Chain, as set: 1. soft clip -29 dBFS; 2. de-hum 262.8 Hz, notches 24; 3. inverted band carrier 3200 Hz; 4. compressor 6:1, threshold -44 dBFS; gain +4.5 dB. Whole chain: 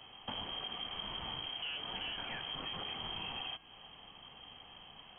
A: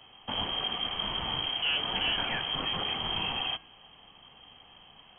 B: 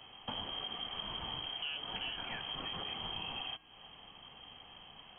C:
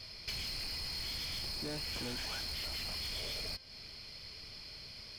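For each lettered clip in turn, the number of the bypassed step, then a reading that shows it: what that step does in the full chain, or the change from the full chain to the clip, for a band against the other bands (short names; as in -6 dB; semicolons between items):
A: 4, momentary loudness spread change -9 LU; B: 1, distortion -10 dB; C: 3, 1 kHz band -9.5 dB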